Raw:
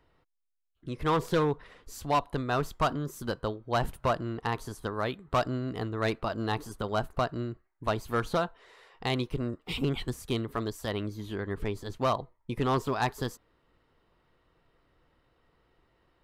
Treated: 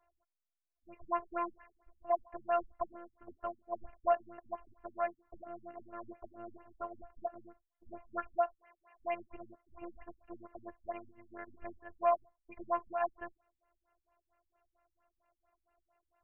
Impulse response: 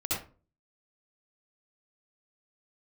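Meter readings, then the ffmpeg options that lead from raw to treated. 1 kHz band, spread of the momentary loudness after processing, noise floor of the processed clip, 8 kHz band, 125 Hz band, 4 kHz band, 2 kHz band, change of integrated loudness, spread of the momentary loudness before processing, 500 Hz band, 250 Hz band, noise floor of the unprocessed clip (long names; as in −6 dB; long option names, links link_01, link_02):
−5.5 dB, 19 LU, below −85 dBFS, below −30 dB, below −30 dB, below −30 dB, −13.0 dB, −7.0 dB, 8 LU, −6.5 dB, −17.5 dB, −71 dBFS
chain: -af "lowshelf=frequency=460:width_type=q:width=3:gain=-9,afftfilt=real='hypot(re,im)*cos(PI*b)':imag='0':win_size=512:overlap=0.75,afftfilt=real='re*lt(b*sr/1024,250*pow(3100/250,0.5+0.5*sin(2*PI*4.4*pts/sr)))':imag='im*lt(b*sr/1024,250*pow(3100/250,0.5+0.5*sin(2*PI*4.4*pts/sr)))':win_size=1024:overlap=0.75,volume=-2.5dB"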